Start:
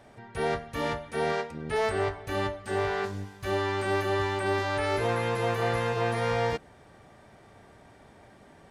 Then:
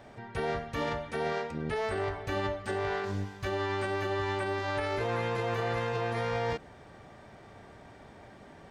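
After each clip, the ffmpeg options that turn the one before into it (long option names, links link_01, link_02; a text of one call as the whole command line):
ffmpeg -i in.wav -af "equalizer=frequency=11000:width=1.4:gain=-11.5,alimiter=level_in=1.5dB:limit=-24dB:level=0:latency=1:release=48,volume=-1.5dB,volume=2.5dB" out.wav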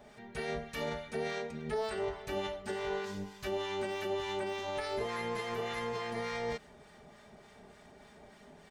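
ffmpeg -i in.wav -filter_complex "[0:a]highshelf=frequency=4400:gain=8.5,aecho=1:1:4.8:0.66,acrossover=split=980[link_01][link_02];[link_01]aeval=exprs='val(0)*(1-0.5/2+0.5/2*cos(2*PI*3.4*n/s))':channel_layout=same[link_03];[link_02]aeval=exprs='val(0)*(1-0.5/2-0.5/2*cos(2*PI*3.4*n/s))':channel_layout=same[link_04];[link_03][link_04]amix=inputs=2:normalize=0,volume=-4dB" out.wav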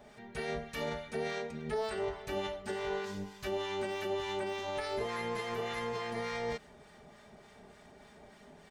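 ffmpeg -i in.wav -af anull out.wav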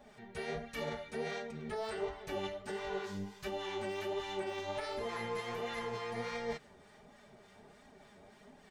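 ffmpeg -i in.wav -af "flanger=delay=3.6:depth=7.1:regen=33:speed=1.4:shape=sinusoidal,volume=1dB" out.wav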